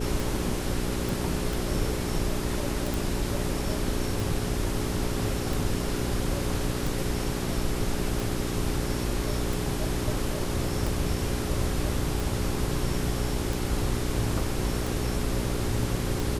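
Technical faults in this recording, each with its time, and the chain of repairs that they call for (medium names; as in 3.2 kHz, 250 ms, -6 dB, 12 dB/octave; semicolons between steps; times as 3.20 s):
hum 60 Hz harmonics 7 -32 dBFS
tick 45 rpm
1.09 s: pop
2.94 s: pop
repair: de-click; de-hum 60 Hz, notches 7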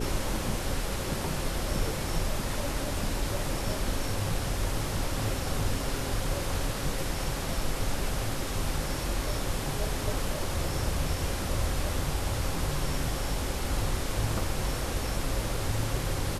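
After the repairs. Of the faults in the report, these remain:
nothing left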